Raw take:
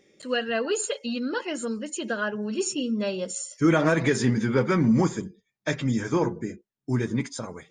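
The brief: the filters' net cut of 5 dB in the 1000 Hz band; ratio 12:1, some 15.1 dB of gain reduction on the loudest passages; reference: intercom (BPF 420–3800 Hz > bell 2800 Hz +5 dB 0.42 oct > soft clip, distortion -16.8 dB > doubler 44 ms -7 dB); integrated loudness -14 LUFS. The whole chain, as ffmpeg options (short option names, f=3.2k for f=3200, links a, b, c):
-filter_complex "[0:a]equalizer=f=1k:t=o:g=-7,acompressor=threshold=-32dB:ratio=12,highpass=420,lowpass=3.8k,equalizer=f=2.8k:t=o:w=0.42:g=5,asoftclip=threshold=-32dB,asplit=2[a][b];[b]adelay=44,volume=-7dB[c];[a][c]amix=inputs=2:normalize=0,volume=27.5dB"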